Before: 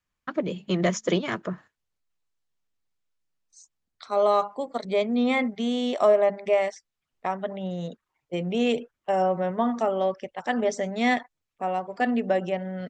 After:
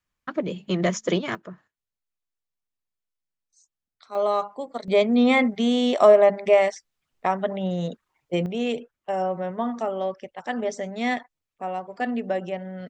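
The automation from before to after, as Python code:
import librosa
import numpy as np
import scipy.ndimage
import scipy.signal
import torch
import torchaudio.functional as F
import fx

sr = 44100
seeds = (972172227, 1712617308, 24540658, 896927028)

y = fx.gain(x, sr, db=fx.steps((0.0, 0.5), (1.35, -8.5), (4.15, -2.0), (4.88, 5.0), (8.46, -2.5)))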